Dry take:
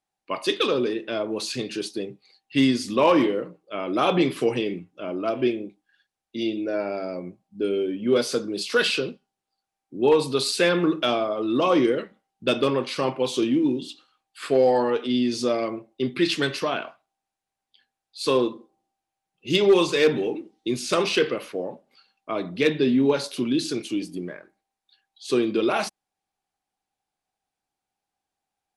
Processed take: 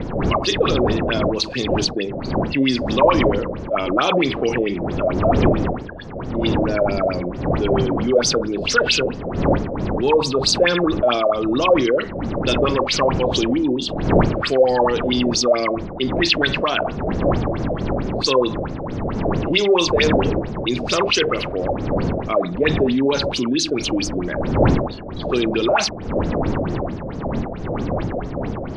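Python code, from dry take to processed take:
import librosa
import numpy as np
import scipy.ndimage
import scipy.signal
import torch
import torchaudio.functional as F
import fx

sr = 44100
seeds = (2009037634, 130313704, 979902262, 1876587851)

y = fx.dmg_wind(x, sr, seeds[0], corner_hz=300.0, level_db=-26.0)
y = fx.filter_lfo_lowpass(y, sr, shape='sine', hz=4.5, low_hz=550.0, high_hz=6600.0, q=7.7)
y = fx.env_flatten(y, sr, amount_pct=50)
y = y * 10.0 ** (-6.5 / 20.0)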